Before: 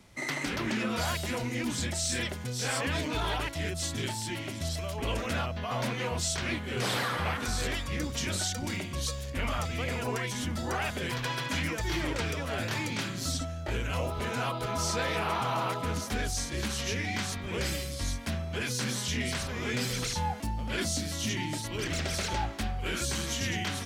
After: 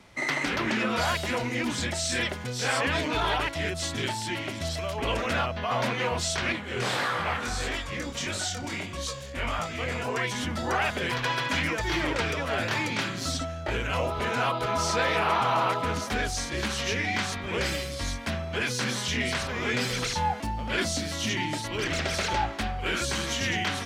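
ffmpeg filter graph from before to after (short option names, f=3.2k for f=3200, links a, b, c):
-filter_complex "[0:a]asettb=1/sr,asplit=3[a][b][c];[a]atrim=end=6.524[d];[b]atrim=start=6.52:end=10.17,asetpts=PTS-STARTPTS,afade=t=in:d=0.004:c=qsin,afade=t=out:st=3.646:d=0.004:c=qsin,equalizer=f=7.4k:w=2.4:g=4,flanger=delay=18:depth=6.9:speed=1.6[e];[c]atrim=start=10.166[f];[d][e]acrossfade=d=0.004:c1=hsin:c2=qsin[g];[g][f]acrossfade=d=0.004:c1=qsin:c2=hsin,lowpass=f=3k:p=1,lowshelf=f=360:g=-8.5,volume=8dB"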